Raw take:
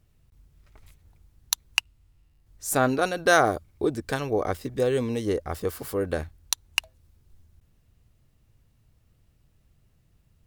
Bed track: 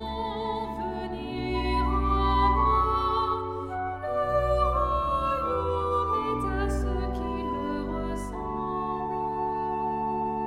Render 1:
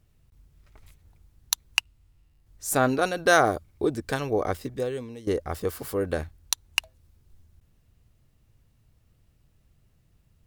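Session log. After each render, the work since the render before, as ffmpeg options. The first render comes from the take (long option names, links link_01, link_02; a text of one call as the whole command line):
ffmpeg -i in.wav -filter_complex "[0:a]asplit=2[link_01][link_02];[link_01]atrim=end=5.27,asetpts=PTS-STARTPTS,afade=type=out:start_time=4.62:duration=0.65:curve=qua:silence=0.211349[link_03];[link_02]atrim=start=5.27,asetpts=PTS-STARTPTS,afade=type=in:duration=0.004:curve=hsin:silence=0.211349[link_04];[link_03][link_04]concat=n=2:v=0:a=1" out.wav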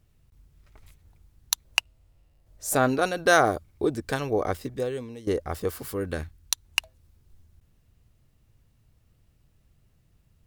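ffmpeg -i in.wav -filter_complex "[0:a]asettb=1/sr,asplit=3[link_01][link_02][link_03];[link_01]atrim=end=1.654[link_04];[link_02]atrim=start=1.65:end=2.76,asetpts=PTS-STARTPTS,afade=type=in:duration=0.004:curve=qsin,afade=type=out:start_time=1.106:duration=0.004:curve=qsin,equalizer=frequency=590:width=2.1:gain=12[link_05];[link_03]atrim=start=2.756[link_06];[link_04][link_05]acrossfade=duration=0.004:curve1=hsin:curve2=qsin[link_07];[link_07][link_06]acrossfade=duration=0.004:curve1=qsin:curve2=hsin,asettb=1/sr,asplit=3[link_08][link_09][link_10];[link_08]atrim=end=5.814[link_11];[link_09]atrim=start=5.81:end=6.65,asetpts=PTS-STARTPTS,afade=type=in:duration=0.004:curve=qsin,afade=type=out:start_time=0.836:duration=0.004:curve=qsin,equalizer=frequency=640:width=1.1:gain=-6.5[link_12];[link_10]atrim=start=6.646[link_13];[link_11][link_12]acrossfade=duration=0.004:curve1=hsin:curve2=qsin[link_14];[link_14][link_13]acrossfade=duration=0.004:curve1=qsin:curve2=hsin" out.wav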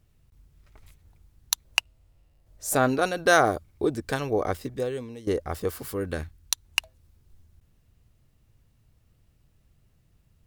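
ffmpeg -i in.wav -af anull out.wav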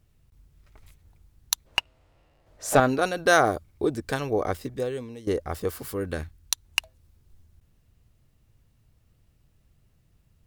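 ffmpeg -i in.wav -filter_complex "[0:a]asettb=1/sr,asplit=3[link_01][link_02][link_03];[link_01]atrim=end=1.664[link_04];[link_02]atrim=start=1.66:end=2.8,asetpts=PTS-STARTPTS,afade=type=in:duration=0.004:curve=qsin,afade=type=out:start_time=1.136:duration=0.004:curve=qsin,asplit=2[link_05][link_06];[link_06]highpass=frequency=720:poles=1,volume=20dB,asoftclip=type=tanh:threshold=-2.5dB[link_07];[link_05][link_07]amix=inputs=2:normalize=0,lowpass=frequency=1400:poles=1,volume=-6dB[link_08];[link_03]atrim=start=2.796[link_09];[link_04][link_08]acrossfade=duration=0.004:curve1=hsin:curve2=qsin[link_10];[link_10][link_09]acrossfade=duration=0.004:curve1=qsin:curve2=hsin" out.wav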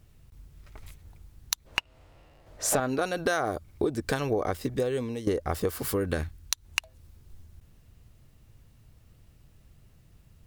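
ffmpeg -i in.wav -filter_complex "[0:a]asplit=2[link_01][link_02];[link_02]alimiter=limit=-14.5dB:level=0:latency=1:release=136,volume=1dB[link_03];[link_01][link_03]amix=inputs=2:normalize=0,acompressor=threshold=-24dB:ratio=6" out.wav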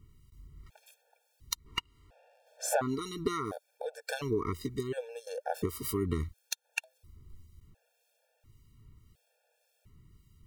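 ffmpeg -i in.wav -filter_complex "[0:a]acrossover=split=2400[link_01][link_02];[link_01]aeval=exprs='val(0)*(1-0.5/2+0.5/2*cos(2*PI*1.8*n/s))':channel_layout=same[link_03];[link_02]aeval=exprs='val(0)*(1-0.5/2-0.5/2*cos(2*PI*1.8*n/s))':channel_layout=same[link_04];[link_03][link_04]amix=inputs=2:normalize=0,afftfilt=real='re*gt(sin(2*PI*0.71*pts/sr)*(1-2*mod(floor(b*sr/1024/460),2)),0)':imag='im*gt(sin(2*PI*0.71*pts/sr)*(1-2*mod(floor(b*sr/1024/460),2)),0)':win_size=1024:overlap=0.75" out.wav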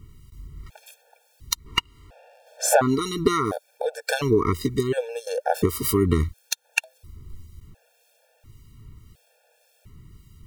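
ffmpeg -i in.wav -af "volume=11.5dB,alimiter=limit=-2dB:level=0:latency=1" out.wav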